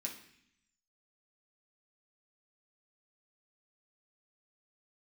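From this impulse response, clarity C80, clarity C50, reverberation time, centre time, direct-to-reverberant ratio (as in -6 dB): 11.5 dB, 8.0 dB, 0.65 s, 22 ms, -2.0 dB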